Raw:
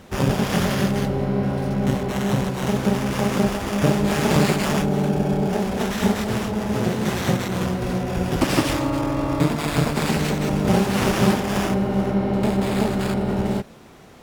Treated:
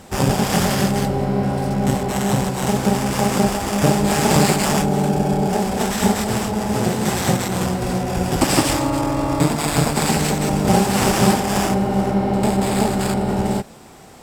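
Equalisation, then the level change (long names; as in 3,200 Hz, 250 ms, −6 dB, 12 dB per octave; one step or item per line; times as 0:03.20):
thirty-one-band graphic EQ 800 Hz +6 dB, 5,000 Hz +5 dB, 8,000 Hz +12 dB, 12,500 Hz +7 dB
+2.0 dB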